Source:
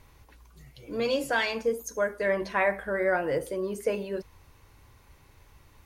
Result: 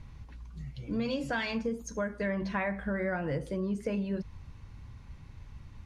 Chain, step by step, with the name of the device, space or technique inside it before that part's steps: jukebox (low-pass 6 kHz 12 dB/octave; resonant low shelf 280 Hz +10 dB, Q 1.5; compression 4:1, threshold -28 dBFS, peak gain reduction 7 dB); trim -1 dB

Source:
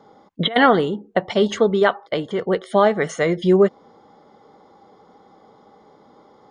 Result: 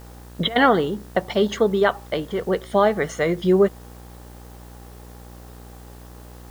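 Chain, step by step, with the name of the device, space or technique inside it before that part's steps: video cassette with head-switching buzz (mains buzz 60 Hz, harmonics 32, -40 dBFS -6 dB/octave; white noise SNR 30 dB); trim -2 dB

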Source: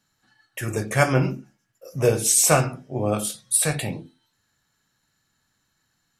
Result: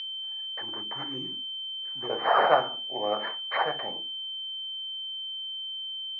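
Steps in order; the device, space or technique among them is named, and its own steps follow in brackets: 0.62–2.10 s: elliptic band-stop 320–4600 Hz; toy sound module (decimation joined by straight lines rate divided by 6×; class-D stage that switches slowly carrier 3.1 kHz; cabinet simulation 600–4500 Hz, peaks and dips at 850 Hz +5 dB, 1.8 kHz +4 dB, 3.1 kHz -8 dB)

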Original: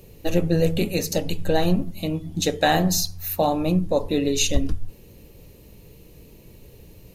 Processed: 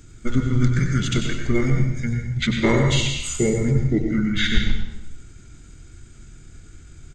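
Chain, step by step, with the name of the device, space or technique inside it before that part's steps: monster voice (pitch shift -5 st; formant shift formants -5.5 st; bass shelf 130 Hz +4 dB; delay 93 ms -9.5 dB; reverberation RT60 0.80 s, pre-delay 101 ms, DRR 4 dB)

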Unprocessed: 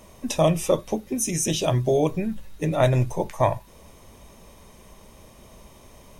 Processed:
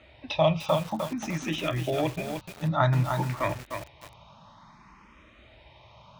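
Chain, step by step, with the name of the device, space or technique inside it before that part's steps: FFT filter 110 Hz 0 dB, 430 Hz -18 dB, 1.1 kHz -7 dB, 3.4 kHz +4 dB; barber-pole phaser into a guitar amplifier (barber-pole phaser +0.55 Hz; saturation -17.5 dBFS, distortion -18 dB; cabinet simulation 83–3500 Hz, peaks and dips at 86 Hz -9 dB, 310 Hz +8 dB, 610 Hz +7 dB, 880 Hz +10 dB, 1.3 kHz +9 dB, 3.1 kHz -6 dB); bit-crushed delay 302 ms, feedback 35%, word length 7-bit, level -5.5 dB; trim +4.5 dB

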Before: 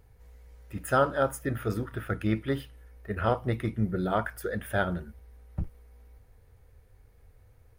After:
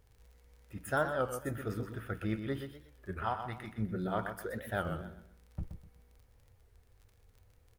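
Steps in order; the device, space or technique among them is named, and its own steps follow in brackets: 3.22–3.78 s: resonant low shelf 660 Hz -6.5 dB, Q 3; feedback delay 125 ms, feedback 31%, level -8 dB; warped LP (warped record 33 1/3 rpm, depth 160 cents; crackle 34 per s -43 dBFS; pink noise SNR 40 dB); trim -7.5 dB

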